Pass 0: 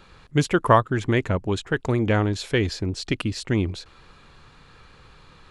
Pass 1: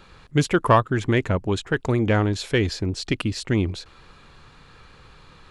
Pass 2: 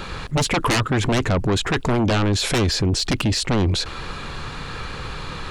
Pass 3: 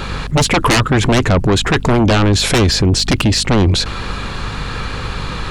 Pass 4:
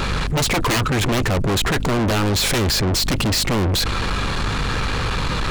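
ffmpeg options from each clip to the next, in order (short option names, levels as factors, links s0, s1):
-af "acontrast=32,volume=0.631"
-af "aeval=exprs='0.596*sin(PI/2*5.01*val(0)/0.596)':c=same,alimiter=limit=0.178:level=0:latency=1:release=19"
-af "aeval=exprs='val(0)+0.0224*(sin(2*PI*50*n/s)+sin(2*PI*2*50*n/s)/2+sin(2*PI*3*50*n/s)/3+sin(2*PI*4*50*n/s)/4+sin(2*PI*5*50*n/s)/5)':c=same,volume=2.24"
-af "asoftclip=type=tanh:threshold=0.0708,volume=1.88"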